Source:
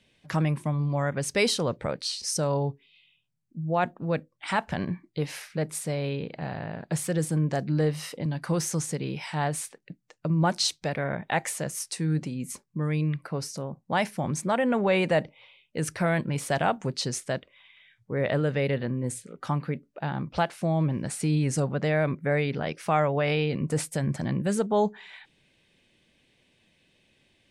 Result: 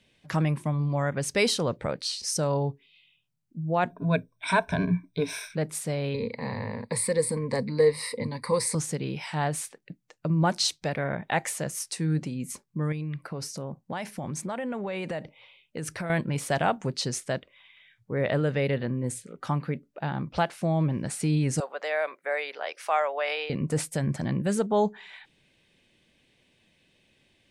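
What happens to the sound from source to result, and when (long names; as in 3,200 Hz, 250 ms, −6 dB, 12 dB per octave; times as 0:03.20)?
0:03.90–0:05.55: EQ curve with evenly spaced ripples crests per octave 1.6, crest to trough 17 dB
0:06.14–0:08.75: EQ curve with evenly spaced ripples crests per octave 0.94, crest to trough 17 dB
0:12.92–0:16.10: downward compressor, threshold −29 dBFS
0:21.60–0:23.50: high-pass filter 550 Hz 24 dB per octave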